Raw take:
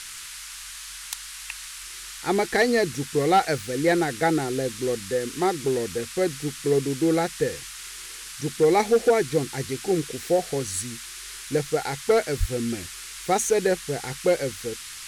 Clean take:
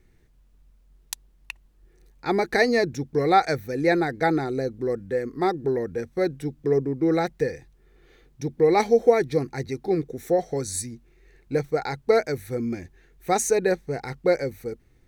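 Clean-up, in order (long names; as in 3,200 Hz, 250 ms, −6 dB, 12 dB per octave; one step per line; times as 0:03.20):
clipped peaks rebuilt −12 dBFS
0:12.39–0:12.51: high-pass filter 140 Hz 24 dB per octave
noise reduction from a noise print 18 dB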